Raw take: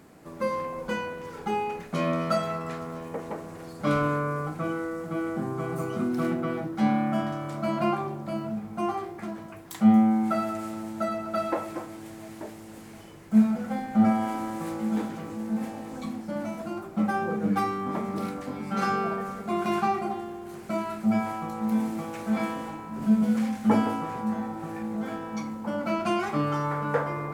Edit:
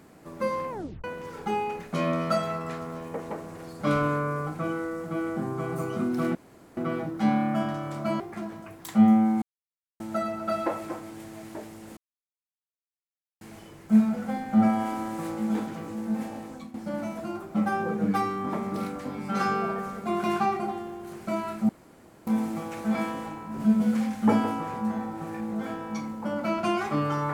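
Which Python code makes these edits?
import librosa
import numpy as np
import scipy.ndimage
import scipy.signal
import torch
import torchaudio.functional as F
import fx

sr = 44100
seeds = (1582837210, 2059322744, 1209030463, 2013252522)

y = fx.edit(x, sr, fx.tape_stop(start_s=0.7, length_s=0.34),
    fx.insert_room_tone(at_s=6.35, length_s=0.42),
    fx.cut(start_s=7.78, length_s=1.28),
    fx.silence(start_s=10.28, length_s=0.58),
    fx.insert_silence(at_s=12.83, length_s=1.44),
    fx.fade_out_to(start_s=15.81, length_s=0.35, floor_db=-14.5),
    fx.room_tone_fill(start_s=21.11, length_s=0.58), tone=tone)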